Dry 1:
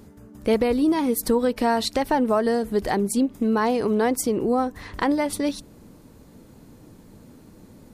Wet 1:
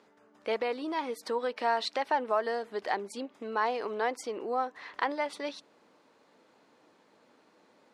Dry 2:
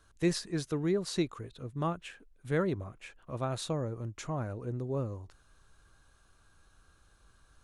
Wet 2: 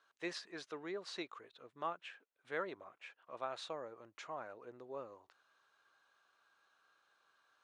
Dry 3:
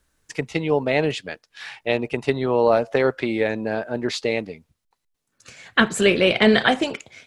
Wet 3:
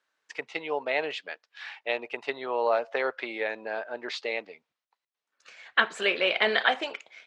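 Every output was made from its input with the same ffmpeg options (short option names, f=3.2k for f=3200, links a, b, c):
-af "highpass=650,lowpass=3.9k,volume=-3.5dB"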